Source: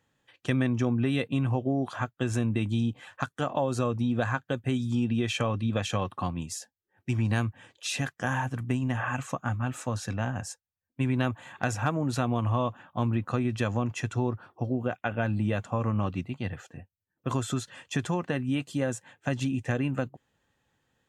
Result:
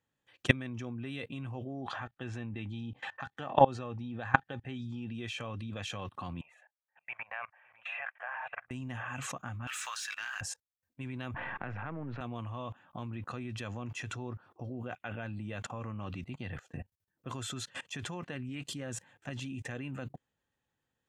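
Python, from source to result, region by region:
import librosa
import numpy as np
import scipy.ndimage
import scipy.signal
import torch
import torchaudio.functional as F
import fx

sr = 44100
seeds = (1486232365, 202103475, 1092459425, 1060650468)

y = fx.chain(x, sr, fx.lowpass(hz=4200.0, slope=12),
    fx.small_body(hz=(810.0, 1800.0), ring_ms=80, db=12), at=(1.81, 5.08))
y = fx.chain(y, sr, fx.ellip_bandpass(low_hz=630.0, high_hz=2400.0, order=3, stop_db=40),
    fx.echo_single(ms=560, db=-16.5), at=(6.41, 8.71))
y = fx.chain(y, sr, fx.highpass(hz=1300.0, slope=24),
    fx.leveller(passes=2), at=(9.67, 10.41))
y = fx.chain(y, sr, fx.halfwave_gain(db=-7.0),
    fx.lowpass(hz=2300.0, slope=24),
    fx.band_squash(depth_pct=40), at=(11.34, 12.21))
y = fx.chain(y, sr, fx.low_shelf(hz=160.0, db=4.5),
    fx.doppler_dist(depth_ms=0.11), at=(18.35, 19.31))
y = fx.dynamic_eq(y, sr, hz=2700.0, q=0.76, threshold_db=-46.0, ratio=4.0, max_db=6)
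y = fx.level_steps(y, sr, step_db=23)
y = y * librosa.db_to_amplitude(6.5)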